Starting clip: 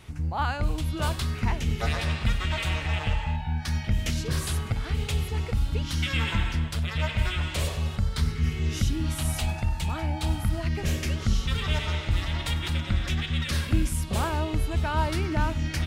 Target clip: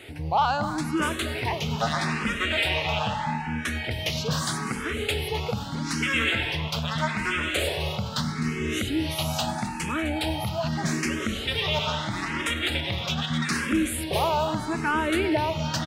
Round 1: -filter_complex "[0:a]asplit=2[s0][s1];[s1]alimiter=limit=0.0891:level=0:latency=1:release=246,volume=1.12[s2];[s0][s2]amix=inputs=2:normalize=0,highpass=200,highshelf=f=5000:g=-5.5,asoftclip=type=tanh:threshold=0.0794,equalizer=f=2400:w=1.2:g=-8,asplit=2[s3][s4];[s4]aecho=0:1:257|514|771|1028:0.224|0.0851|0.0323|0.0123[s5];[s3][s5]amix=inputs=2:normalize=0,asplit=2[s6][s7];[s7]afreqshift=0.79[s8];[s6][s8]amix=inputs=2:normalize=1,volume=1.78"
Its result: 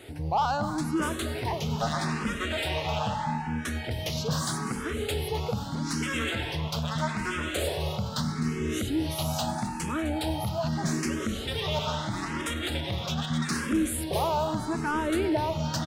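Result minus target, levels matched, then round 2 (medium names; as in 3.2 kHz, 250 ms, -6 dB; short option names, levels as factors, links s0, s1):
saturation: distortion +9 dB; 2 kHz band -4.0 dB
-filter_complex "[0:a]asplit=2[s0][s1];[s1]alimiter=limit=0.0891:level=0:latency=1:release=246,volume=1.12[s2];[s0][s2]amix=inputs=2:normalize=0,highpass=200,highshelf=f=5000:g=-5.5,asoftclip=type=tanh:threshold=0.168,asplit=2[s3][s4];[s4]aecho=0:1:257|514|771|1028:0.224|0.0851|0.0323|0.0123[s5];[s3][s5]amix=inputs=2:normalize=0,asplit=2[s6][s7];[s7]afreqshift=0.79[s8];[s6][s8]amix=inputs=2:normalize=1,volume=1.78"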